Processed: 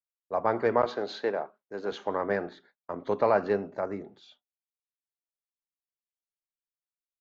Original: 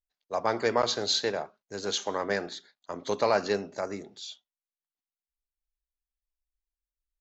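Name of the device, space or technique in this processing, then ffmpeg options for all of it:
hearing-loss simulation: -filter_complex "[0:a]asettb=1/sr,asplit=3[link_01][link_02][link_03];[link_01]atrim=end=0.854[link_04];[link_02]atrim=start=0.85:end=1.92,asetpts=PTS-STARTPTS,afade=type=in:duration=0.004:curve=qsin,afade=type=out:start_time=1.066:duration=0.004:curve=qsin,highpass=220[link_05];[link_03]atrim=start=1.916[link_06];[link_04][link_05]acrossfade=duration=0.004:curve1=hsin:curve2=qsin[link_07];[link_07][link_06]acrossfade=duration=0.004:curve1=qsin:curve2=hsin,lowpass=1600,agate=range=-33dB:threshold=-59dB:ratio=3:detection=peak,volume=1.5dB"

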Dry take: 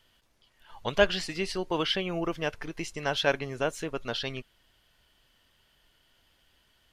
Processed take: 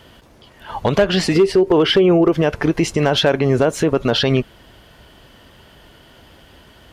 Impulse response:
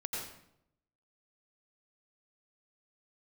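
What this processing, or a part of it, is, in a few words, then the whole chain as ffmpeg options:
mastering chain: -filter_complex "[0:a]asettb=1/sr,asplit=3[link_01][link_02][link_03];[link_01]atrim=end=1.354[link_04];[link_02]atrim=start=1.35:end=2.33,asetpts=PTS-STARTPTS,afade=type=in:duration=0.004:curve=qsin,afade=type=out:start_time=0.976:duration=0.004:curve=qsin,equalizer=frequency=400:width_type=o:width=0.33:gain=12,equalizer=frequency=4000:width_type=o:width=0.33:gain=-4,equalizer=frequency=6300:width_type=o:width=0.33:gain=-3[link_05];[link_03]atrim=start=2.326[link_06];[link_04][link_05]acrossfade=duration=0.004:curve1=hsin:curve2=qsin[link_07];[link_07][link_06]acrossfade=duration=0.004:curve1=qsin:curve2=hsin,highpass=44,equalizer=frequency=360:width_type=o:width=2.9:gain=3,acompressor=threshold=-28dB:ratio=3,tiltshelf=frequency=1400:gain=5,asoftclip=type=hard:threshold=-18.5dB,alimiter=level_in=25.5dB:limit=-1dB:release=50:level=0:latency=1,volume=-6dB"

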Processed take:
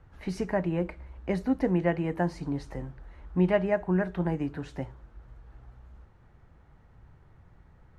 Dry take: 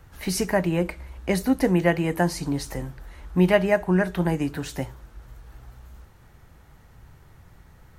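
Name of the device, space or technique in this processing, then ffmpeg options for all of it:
through cloth: -af "lowpass=9200,highshelf=frequency=3600:gain=-17.5,volume=-5dB"

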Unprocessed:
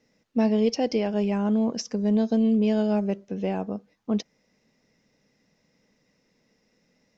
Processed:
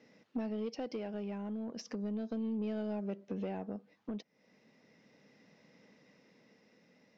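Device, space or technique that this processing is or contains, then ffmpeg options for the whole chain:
AM radio: -af "highpass=150,lowpass=4100,acompressor=threshold=-39dB:ratio=6,asoftclip=type=tanh:threshold=-33.5dB,tremolo=f=0.35:d=0.33,volume=5.5dB"

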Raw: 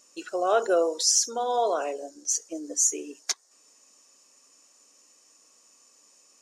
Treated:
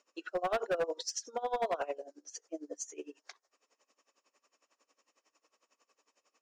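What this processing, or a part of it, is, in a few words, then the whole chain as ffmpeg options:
helicopter radio: -af "highpass=360,lowpass=2900,aeval=exprs='val(0)*pow(10,-21*(0.5-0.5*cos(2*PI*11*n/s))/20)':channel_layout=same,asoftclip=type=hard:threshold=-26.5dB"

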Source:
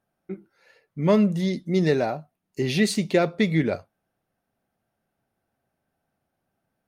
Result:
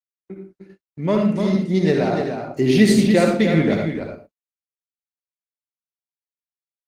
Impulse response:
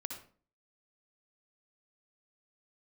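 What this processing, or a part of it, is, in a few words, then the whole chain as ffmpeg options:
speakerphone in a meeting room: -filter_complex "[0:a]asplit=3[link_01][link_02][link_03];[link_01]afade=type=out:start_time=2.1:duration=0.02[link_04];[link_02]adynamicequalizer=threshold=0.0178:dfrequency=280:dqfactor=1.2:tfrequency=280:tqfactor=1.2:attack=5:release=100:ratio=0.375:range=3.5:mode=boostabove:tftype=bell,afade=type=in:start_time=2.1:duration=0.02,afade=type=out:start_time=2.99:duration=0.02[link_05];[link_03]afade=type=in:start_time=2.99:duration=0.02[link_06];[link_04][link_05][link_06]amix=inputs=3:normalize=0,aecho=1:1:297:0.447[link_07];[1:a]atrim=start_sample=2205[link_08];[link_07][link_08]afir=irnorm=-1:irlink=0,dynaudnorm=framelen=250:gausssize=13:maxgain=6dB,agate=range=-53dB:threshold=-42dB:ratio=16:detection=peak,volume=1dB" -ar 48000 -c:a libopus -b:a 20k

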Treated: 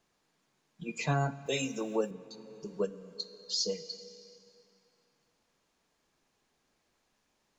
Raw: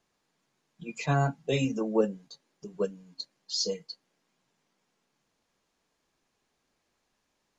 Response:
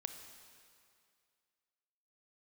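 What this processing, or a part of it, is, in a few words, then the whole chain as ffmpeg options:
ducked reverb: -filter_complex "[0:a]asplit=3[link_01][link_02][link_03];[1:a]atrim=start_sample=2205[link_04];[link_02][link_04]afir=irnorm=-1:irlink=0[link_05];[link_03]apad=whole_len=334537[link_06];[link_05][link_06]sidechaincompress=threshold=-31dB:ratio=8:attack=16:release=691,volume=5.5dB[link_07];[link_01][link_07]amix=inputs=2:normalize=0,asettb=1/sr,asplit=3[link_08][link_09][link_10];[link_08]atrim=end=1.464[link_11];[link_09]atrim=start=1.46:end=2.11,asetpts=PTS-STARTPTS,afade=type=in:duration=0.004:curve=qsin,afade=type=out:start_time=0.646:duration=0.004:curve=qsin,aemphasis=mode=production:type=bsi[link_12];[link_10]atrim=start=2.106[link_13];[link_11][link_12]acrossfade=duration=0.004:curve1=hsin:curve2=qsin[link_14];[link_14][link_13]acrossfade=duration=0.004:curve1=qsin:curve2=hsin,volume=-6.5dB"

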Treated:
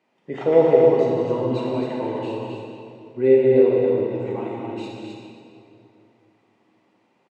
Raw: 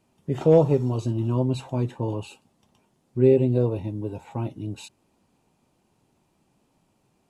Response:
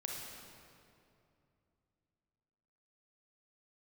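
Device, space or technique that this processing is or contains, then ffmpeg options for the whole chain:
station announcement: -filter_complex "[0:a]highpass=330,lowpass=3800,equalizer=frequency=2000:width_type=o:width=0.25:gain=10,aecho=1:1:183.7|265.3:0.316|0.562[link_01];[1:a]atrim=start_sample=2205[link_02];[link_01][link_02]afir=irnorm=-1:irlink=0,volume=4dB"

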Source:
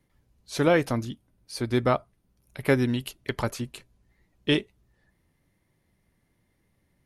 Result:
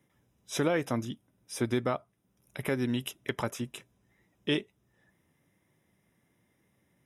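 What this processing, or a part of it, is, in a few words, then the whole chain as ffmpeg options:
PA system with an anti-feedback notch: -af "highpass=120,asuperstop=centerf=4400:order=12:qfactor=5.4,alimiter=limit=-18dB:level=0:latency=1:release=452,volume=1dB"

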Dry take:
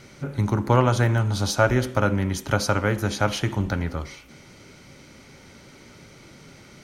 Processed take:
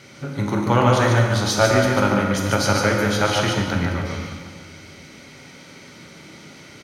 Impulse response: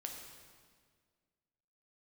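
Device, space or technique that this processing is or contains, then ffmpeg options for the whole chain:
PA in a hall: -filter_complex "[0:a]highpass=100,equalizer=frequency=2800:width_type=o:width=2.2:gain=4,aecho=1:1:146:0.631[link_01];[1:a]atrim=start_sample=2205[link_02];[link_01][link_02]afir=irnorm=-1:irlink=0,volume=4.5dB"

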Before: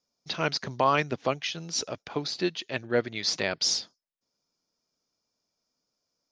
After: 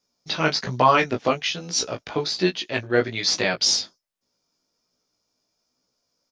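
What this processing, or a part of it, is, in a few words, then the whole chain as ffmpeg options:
double-tracked vocal: -filter_complex "[0:a]asplit=2[link_01][link_02];[link_02]adelay=16,volume=-11dB[link_03];[link_01][link_03]amix=inputs=2:normalize=0,flanger=delay=16:depth=3.4:speed=1.2,volume=9dB"

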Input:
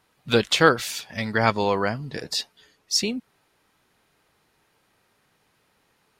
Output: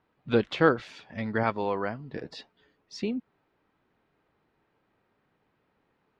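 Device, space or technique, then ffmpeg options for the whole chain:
phone in a pocket: -filter_complex "[0:a]lowpass=3500,equalizer=frequency=290:width_type=o:width=1.1:gain=3.5,highshelf=frequency=2400:gain=-10,asettb=1/sr,asplit=3[link_01][link_02][link_03];[link_01]atrim=end=1.434[link_04];[link_02]atrim=start=1.43:end=2.14,asetpts=PTS-STARTPTS,afade=type=in:duration=0.004:curve=qsin,afade=type=out:start_time=0.706:duration=0.004:curve=qsin,lowshelf=frequency=420:gain=-6[link_05];[link_03]atrim=start=2.136[link_06];[link_04][link_05]acrossfade=duration=0.004:curve1=hsin:curve2=qsin[link_07];[link_07][link_06]acrossfade=duration=0.004:curve1=qsin:curve2=hsin,volume=-4.5dB"

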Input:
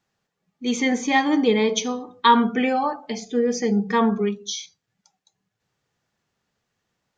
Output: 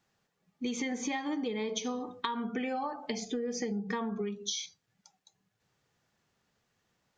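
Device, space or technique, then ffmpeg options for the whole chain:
serial compression, peaks first: -af "acompressor=threshold=-26dB:ratio=10,acompressor=threshold=-32dB:ratio=3"

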